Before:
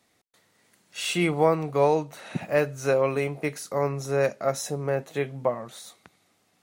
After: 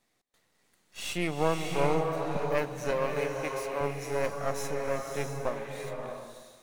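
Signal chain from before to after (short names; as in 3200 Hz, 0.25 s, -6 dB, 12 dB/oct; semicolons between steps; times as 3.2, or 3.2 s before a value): half-wave gain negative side -12 dB; 2.91–3.81 HPF 270 Hz 12 dB/oct; bloom reverb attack 0.63 s, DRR 2 dB; gain -4 dB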